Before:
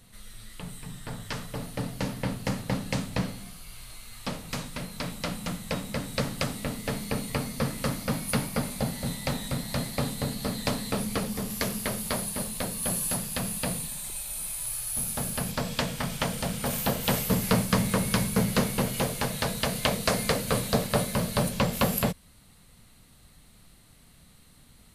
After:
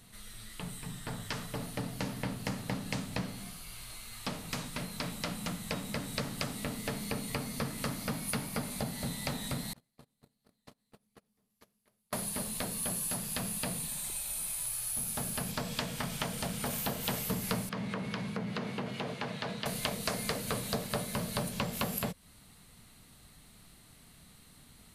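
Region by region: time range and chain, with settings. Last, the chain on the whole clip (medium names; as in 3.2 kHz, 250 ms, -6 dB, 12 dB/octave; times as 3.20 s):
9.73–12.13 s: gate -24 dBFS, range -45 dB + compression 2.5:1, threshold -55 dBFS
17.69–19.66 s: compression, threshold -26 dBFS + band-pass 130–3300 Hz + three bands expanded up and down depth 40%
whole clip: bass shelf 80 Hz -6 dB; band-stop 530 Hz, Q 12; compression 2.5:1, threshold -34 dBFS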